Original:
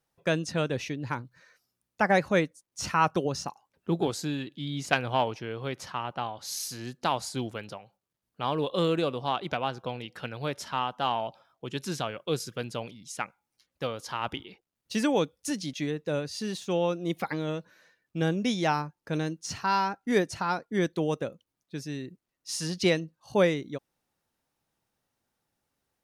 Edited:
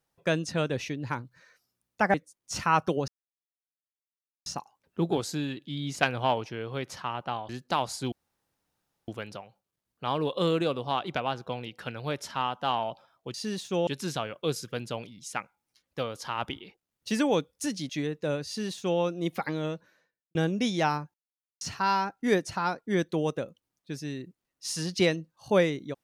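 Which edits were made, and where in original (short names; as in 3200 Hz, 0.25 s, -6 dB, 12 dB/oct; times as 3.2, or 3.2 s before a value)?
2.14–2.42 cut
3.36 insert silence 1.38 s
6.39–6.82 cut
7.45 insert room tone 0.96 s
16.31–16.84 copy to 11.71
17.51–18.19 studio fade out
18.98–19.45 mute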